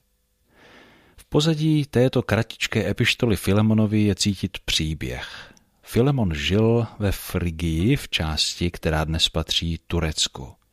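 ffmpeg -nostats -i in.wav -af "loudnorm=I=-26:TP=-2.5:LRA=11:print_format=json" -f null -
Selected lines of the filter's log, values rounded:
"input_i" : "-22.3",
"input_tp" : "-5.0",
"input_lra" : "2.2",
"input_thresh" : "-32.9",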